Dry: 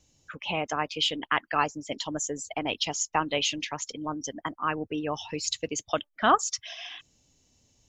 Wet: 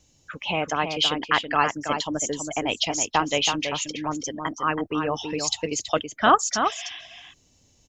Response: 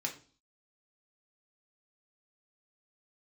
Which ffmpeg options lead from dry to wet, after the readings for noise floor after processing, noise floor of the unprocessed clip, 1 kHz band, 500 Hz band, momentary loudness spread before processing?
-62 dBFS, -71 dBFS, +5.0 dB, +5.0 dB, 10 LU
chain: -filter_complex "[0:a]asplit=2[a][b];[b]adelay=326.5,volume=-6dB,highshelf=f=4k:g=-7.35[c];[a][c]amix=inputs=2:normalize=0,volume=4dB"

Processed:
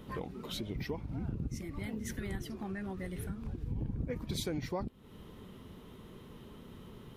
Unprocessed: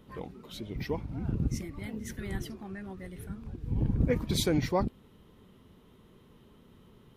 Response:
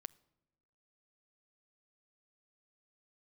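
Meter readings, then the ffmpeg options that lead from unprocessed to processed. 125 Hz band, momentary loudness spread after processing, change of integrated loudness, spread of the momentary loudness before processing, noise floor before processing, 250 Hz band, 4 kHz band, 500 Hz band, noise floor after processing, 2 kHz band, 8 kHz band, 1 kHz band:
-6.0 dB, 15 LU, -6.0 dB, 15 LU, -59 dBFS, -5.5 dB, -5.0 dB, -7.0 dB, -53 dBFS, -3.5 dB, -5.5 dB, -6.5 dB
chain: -af "acompressor=threshold=-43dB:ratio=4,volume=6.5dB"

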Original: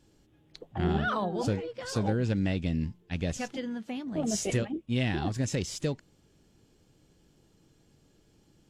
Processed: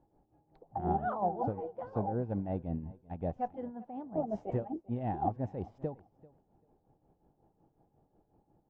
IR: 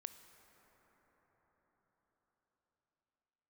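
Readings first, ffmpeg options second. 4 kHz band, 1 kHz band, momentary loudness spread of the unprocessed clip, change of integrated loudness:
under -30 dB, +2.5 dB, 7 LU, -5.0 dB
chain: -filter_complex "[0:a]tremolo=f=5.5:d=0.66,lowpass=f=800:t=q:w=4.9,asplit=2[a][b];[b]aecho=0:1:391|782:0.0794|0.0143[c];[a][c]amix=inputs=2:normalize=0,volume=-5dB"

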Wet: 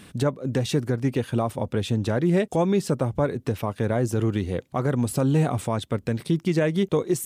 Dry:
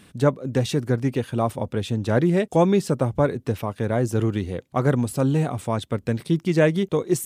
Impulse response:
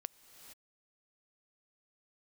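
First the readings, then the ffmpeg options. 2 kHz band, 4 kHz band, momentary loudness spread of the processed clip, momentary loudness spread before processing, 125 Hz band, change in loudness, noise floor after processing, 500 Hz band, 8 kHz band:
-3.0 dB, 0.0 dB, 6 LU, 7 LU, -1.5 dB, -1.5 dB, -53 dBFS, -2.5 dB, -0.5 dB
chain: -af "alimiter=limit=-17dB:level=0:latency=1:release=319,volume=4dB"

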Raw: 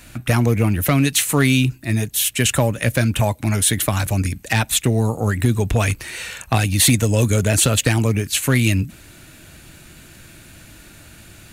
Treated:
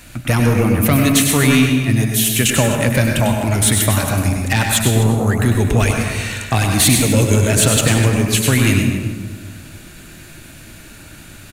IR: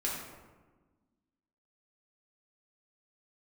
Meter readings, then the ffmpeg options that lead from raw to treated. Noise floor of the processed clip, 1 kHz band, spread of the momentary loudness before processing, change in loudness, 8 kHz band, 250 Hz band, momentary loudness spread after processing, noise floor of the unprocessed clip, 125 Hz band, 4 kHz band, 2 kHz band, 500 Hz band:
-39 dBFS, +3.5 dB, 6 LU, +3.5 dB, +3.5 dB, +5.0 dB, 7 LU, -45 dBFS, +3.0 dB, +3.0 dB, +3.5 dB, +3.5 dB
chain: -filter_complex "[0:a]aecho=1:1:251:0.168,acontrast=50,asplit=2[a][b];[1:a]atrim=start_sample=2205,adelay=97[c];[b][c]afir=irnorm=-1:irlink=0,volume=-6.5dB[d];[a][d]amix=inputs=2:normalize=0,volume=-3.5dB"

